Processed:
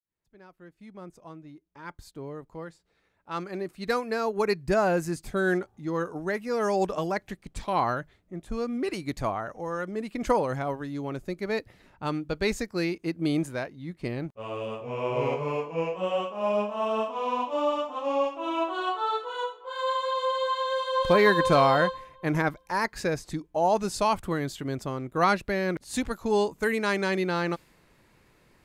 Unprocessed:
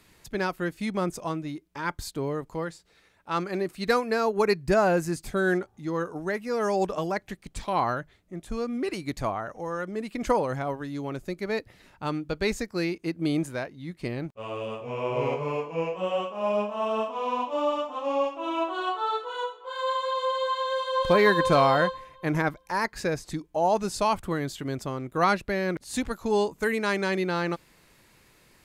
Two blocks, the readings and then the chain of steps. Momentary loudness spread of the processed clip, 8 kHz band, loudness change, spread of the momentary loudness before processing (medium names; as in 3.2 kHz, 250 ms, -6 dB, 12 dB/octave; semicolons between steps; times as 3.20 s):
12 LU, -1.0 dB, 0.0 dB, 10 LU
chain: fade-in on the opening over 5.97 s; tape noise reduction on one side only decoder only